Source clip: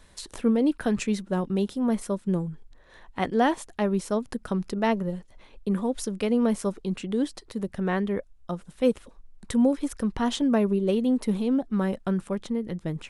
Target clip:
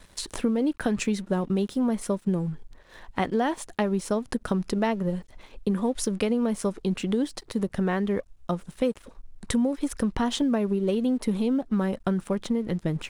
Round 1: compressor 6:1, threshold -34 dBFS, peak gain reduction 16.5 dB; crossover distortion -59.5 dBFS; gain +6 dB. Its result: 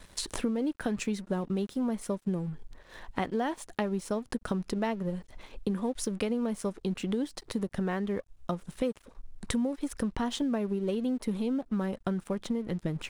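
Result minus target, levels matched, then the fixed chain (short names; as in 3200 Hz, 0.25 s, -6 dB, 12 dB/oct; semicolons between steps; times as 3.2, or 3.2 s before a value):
compressor: peak gain reduction +5.5 dB
compressor 6:1, threshold -27.5 dBFS, peak gain reduction 11 dB; crossover distortion -59.5 dBFS; gain +6 dB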